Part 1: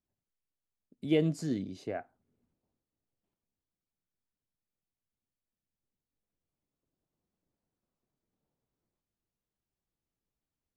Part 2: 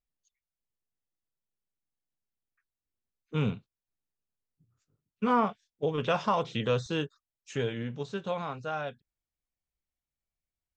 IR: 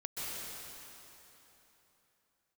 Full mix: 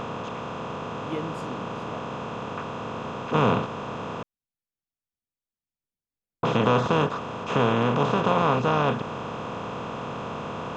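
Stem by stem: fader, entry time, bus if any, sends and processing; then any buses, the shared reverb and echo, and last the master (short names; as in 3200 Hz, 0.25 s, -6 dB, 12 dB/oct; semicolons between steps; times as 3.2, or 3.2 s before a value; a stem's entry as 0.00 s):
-6.0 dB, 0.00 s, no send, dry
+0.5 dB, 0.00 s, muted 4.23–6.43, no send, per-bin compression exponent 0.2; high shelf 4800 Hz -8.5 dB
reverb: off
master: dry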